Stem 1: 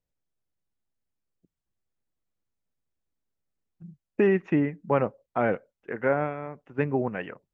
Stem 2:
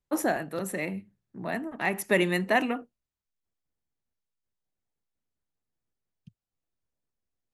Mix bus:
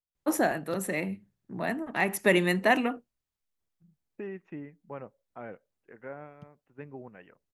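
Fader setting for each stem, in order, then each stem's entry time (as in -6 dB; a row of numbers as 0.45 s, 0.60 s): -17.5 dB, +1.0 dB; 0.00 s, 0.15 s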